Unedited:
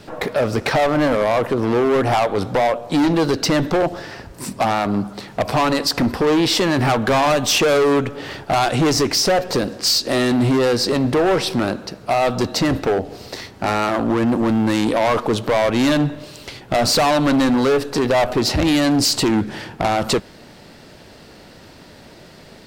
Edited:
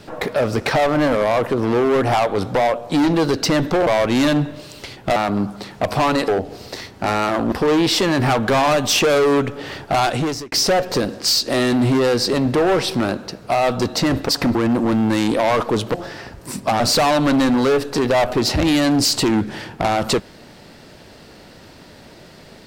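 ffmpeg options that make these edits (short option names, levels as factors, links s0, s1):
-filter_complex "[0:a]asplit=10[s0][s1][s2][s3][s4][s5][s6][s7][s8][s9];[s0]atrim=end=3.872[s10];[s1]atrim=start=15.508:end=16.802[s11];[s2]atrim=start=4.728:end=5.852[s12];[s3]atrim=start=12.878:end=14.122[s13];[s4]atrim=start=6.108:end=9.11,asetpts=PTS-STARTPTS,afade=t=out:st=2.542:d=0.46[s14];[s5]atrim=start=9.11:end=12.882,asetpts=PTS-STARTPTS,afade=t=in:d=0.004:c=hsin[s15];[s6]atrim=start=5.848:end=6.112[s16];[s7]atrim=start=14.118:end=15.512[s17];[s8]atrim=start=3.868:end=4.732[s18];[s9]atrim=start=16.798[s19];[s10][s11]acrossfade=d=0.004:c1=hsin:c2=hsin[s20];[s20][s12]acrossfade=d=0.004:c1=hsin:c2=hsin[s21];[s21][s13]acrossfade=d=0.004:c1=hsin:c2=hsin[s22];[s14][s15]concat=n=2:v=0:a=1[s23];[s22][s23]acrossfade=d=0.004:c1=hsin:c2=hsin[s24];[s24][s16]acrossfade=d=0.004:c1=hsin:c2=hsin[s25];[s25][s17]acrossfade=d=0.004:c1=hsin:c2=hsin[s26];[s26][s18]acrossfade=d=0.004:c1=hsin:c2=hsin[s27];[s27][s19]acrossfade=d=0.004:c1=hsin:c2=hsin"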